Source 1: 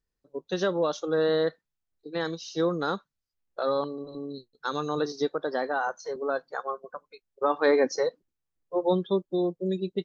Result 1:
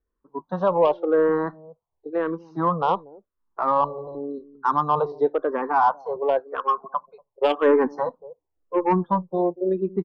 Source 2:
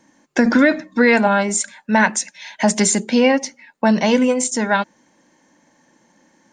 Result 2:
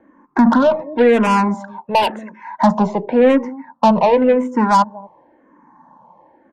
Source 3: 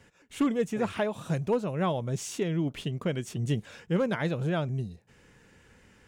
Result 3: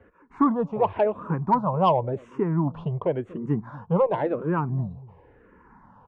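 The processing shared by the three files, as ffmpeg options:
-filter_complex "[0:a]lowpass=f=1k:t=q:w=4.9,acrossover=split=630[a][b];[a]aecho=1:1:238:0.119[c];[b]asoftclip=type=tanh:threshold=-17dB[d];[c][d]amix=inputs=2:normalize=0,acontrast=89,asplit=2[e][f];[f]afreqshift=-0.93[g];[e][g]amix=inputs=2:normalize=1,volume=-1dB"

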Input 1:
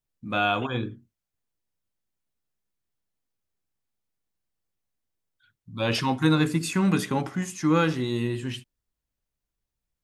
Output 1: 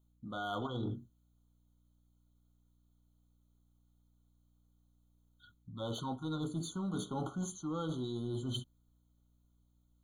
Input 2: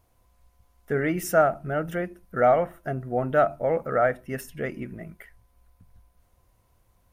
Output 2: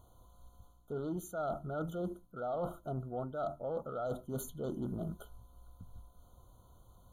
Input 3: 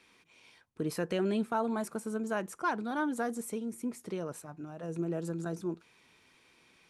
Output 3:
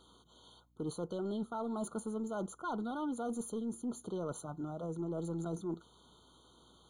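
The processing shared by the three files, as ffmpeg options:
-af "areverse,acompressor=threshold=-36dB:ratio=20,areverse,aeval=exprs='val(0)+0.0002*(sin(2*PI*60*n/s)+sin(2*PI*2*60*n/s)/2+sin(2*PI*3*60*n/s)/3+sin(2*PI*4*60*n/s)/4+sin(2*PI*5*60*n/s)/5)':c=same,aeval=exprs='0.0355*(cos(1*acos(clip(val(0)/0.0355,-1,1)))-cos(1*PI/2))+0.00224*(cos(5*acos(clip(val(0)/0.0355,-1,1)))-cos(5*PI/2))':c=same,afftfilt=real='re*eq(mod(floor(b*sr/1024/1500),2),0)':imag='im*eq(mod(floor(b*sr/1024/1500),2),0)':win_size=1024:overlap=0.75,volume=1.5dB"

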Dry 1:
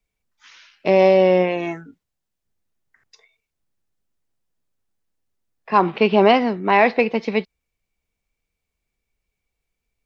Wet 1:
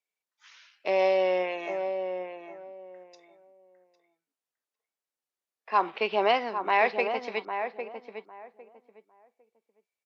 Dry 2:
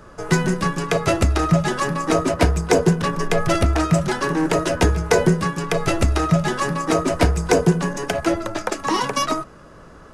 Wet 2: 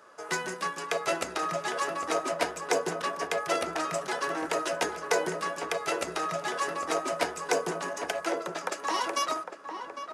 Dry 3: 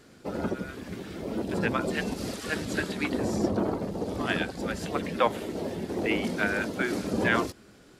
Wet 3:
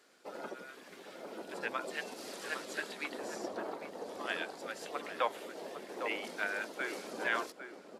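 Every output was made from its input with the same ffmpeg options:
-filter_complex "[0:a]highpass=530,asplit=2[a][b];[b]adelay=804,lowpass=f=1.3k:p=1,volume=-6.5dB,asplit=2[c][d];[d]adelay=804,lowpass=f=1.3k:p=1,volume=0.22,asplit=2[e][f];[f]adelay=804,lowpass=f=1.3k:p=1,volume=0.22[g];[a][c][e][g]amix=inputs=4:normalize=0,aresample=32000,aresample=44100,volume=-7dB"

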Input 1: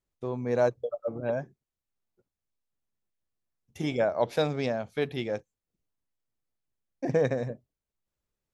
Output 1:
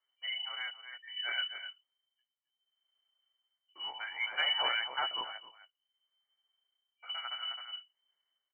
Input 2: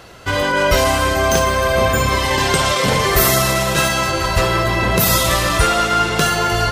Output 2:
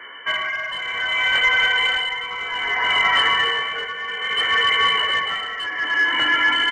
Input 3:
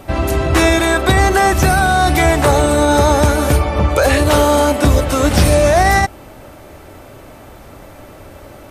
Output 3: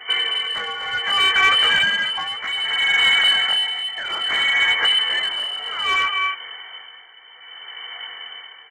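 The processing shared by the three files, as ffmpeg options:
-filter_complex "[0:a]afftfilt=real='re*(1-between(b*sr/4096,180,770))':imag='im*(1-between(b*sr/4096,180,770))':win_size=4096:overlap=0.75,asplit=2[a][b];[b]acompressor=threshold=-24dB:ratio=5,volume=1.5dB[c];[a][c]amix=inputs=2:normalize=0,lowpass=f=2.6k:t=q:w=0.5098,lowpass=f=2.6k:t=q:w=0.6013,lowpass=f=2.6k:t=q:w=0.9,lowpass=f=2.6k:t=q:w=2.563,afreqshift=-3100,asplit=2[d][e];[e]aecho=0:1:264:0.299[f];[d][f]amix=inputs=2:normalize=0,flanger=delay=16:depth=7.8:speed=0.4,asplit=2[g][h];[h]highpass=f=720:p=1,volume=14dB,asoftclip=type=tanh:threshold=-0.5dB[i];[g][i]amix=inputs=2:normalize=0,lowpass=f=1.7k:p=1,volume=-6dB,tremolo=f=0.62:d=0.74,volume=-2.5dB"

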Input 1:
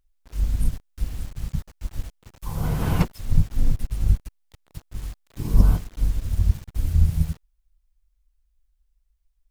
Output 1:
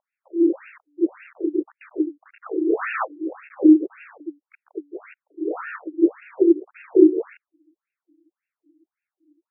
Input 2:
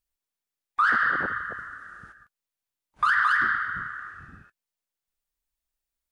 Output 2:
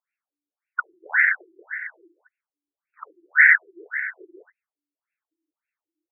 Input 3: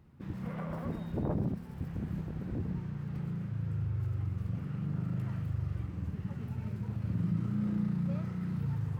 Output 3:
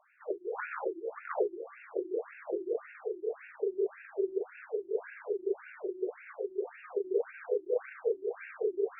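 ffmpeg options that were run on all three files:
-af "crystalizer=i=8:c=0,afreqshift=290,afftfilt=real='re*between(b*sr/1024,250*pow(2000/250,0.5+0.5*sin(2*PI*1.8*pts/sr))/1.41,250*pow(2000/250,0.5+0.5*sin(2*PI*1.8*pts/sr))*1.41)':imag='im*between(b*sr/1024,250*pow(2000/250,0.5+0.5*sin(2*PI*1.8*pts/sr))/1.41,250*pow(2000/250,0.5+0.5*sin(2*PI*1.8*pts/sr))*1.41)':win_size=1024:overlap=0.75,volume=5dB"

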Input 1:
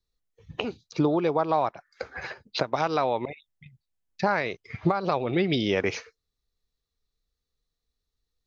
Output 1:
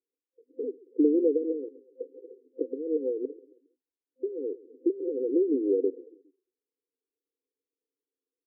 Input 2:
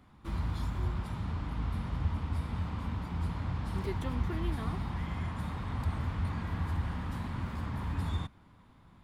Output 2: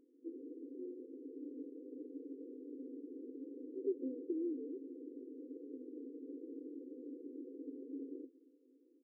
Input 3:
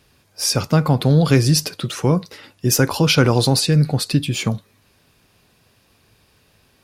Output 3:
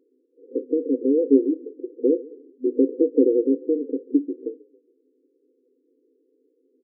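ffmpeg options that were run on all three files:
-filter_complex "[0:a]acrusher=bits=4:mode=log:mix=0:aa=0.000001,asplit=4[a][b][c][d];[b]adelay=136,afreqshift=-30,volume=-21dB[e];[c]adelay=272,afreqshift=-60,volume=-28.1dB[f];[d]adelay=408,afreqshift=-90,volume=-35.3dB[g];[a][e][f][g]amix=inputs=4:normalize=0,afftfilt=real='re*between(b*sr/4096,250,520)':imag='im*between(b*sr/4096,250,520)':win_size=4096:overlap=0.75,volume=2dB"

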